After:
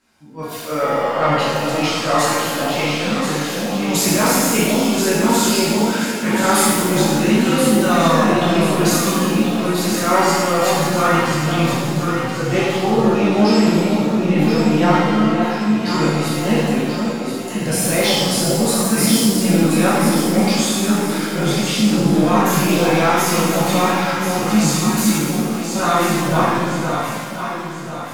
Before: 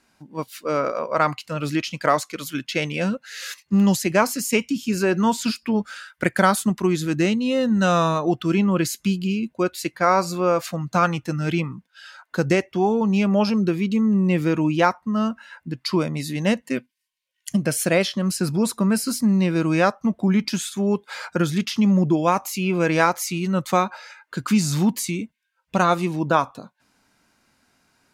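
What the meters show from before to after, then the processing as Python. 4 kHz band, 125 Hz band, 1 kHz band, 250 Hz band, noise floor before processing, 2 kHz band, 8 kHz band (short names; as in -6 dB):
+10.0 dB, +4.5 dB, +5.5 dB, +5.0 dB, -71 dBFS, +5.5 dB, +10.0 dB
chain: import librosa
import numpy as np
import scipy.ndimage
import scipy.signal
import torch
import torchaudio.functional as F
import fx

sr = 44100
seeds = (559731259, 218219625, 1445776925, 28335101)

p1 = fx.transient(x, sr, attack_db=-3, sustain_db=8)
p2 = 10.0 ** (-17.0 / 20.0) * np.tanh(p1 / 10.0 ** (-17.0 / 20.0))
p3 = p1 + F.gain(torch.from_numpy(p2), -6.0).numpy()
p4 = fx.echo_alternate(p3, sr, ms=516, hz=850.0, feedback_pct=65, wet_db=-3)
p5 = fx.rev_shimmer(p4, sr, seeds[0], rt60_s=1.4, semitones=7, shimmer_db=-8, drr_db=-9.0)
y = F.gain(torch.from_numpy(p5), -8.5).numpy()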